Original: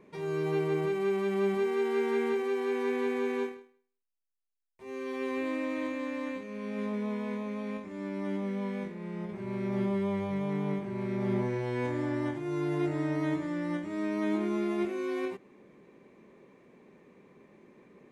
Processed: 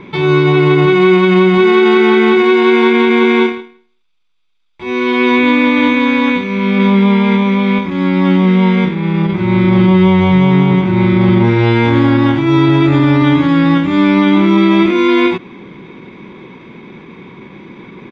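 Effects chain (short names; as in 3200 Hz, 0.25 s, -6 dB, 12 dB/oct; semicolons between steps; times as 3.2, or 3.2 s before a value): synth low-pass 3600 Hz, resonance Q 2.8; comb 0.8 ms, depth 48%; pitch shift -1 st; maximiser +23 dB; gain -1 dB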